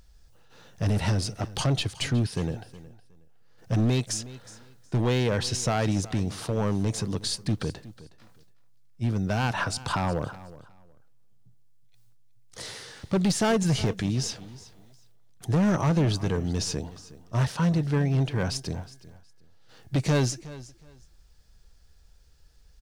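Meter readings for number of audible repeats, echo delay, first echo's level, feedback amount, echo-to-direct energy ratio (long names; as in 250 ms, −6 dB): 2, 366 ms, −18.0 dB, 21%, −18.0 dB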